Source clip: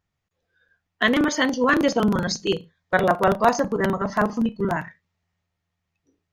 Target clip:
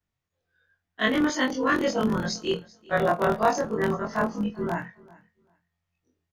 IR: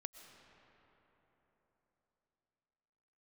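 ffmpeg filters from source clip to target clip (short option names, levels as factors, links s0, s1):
-filter_complex "[0:a]afftfilt=real='re':imag='-im':win_size=2048:overlap=0.75,asplit=2[s0][s1];[s1]aecho=0:1:390|780:0.0708|0.0127[s2];[s0][s2]amix=inputs=2:normalize=0"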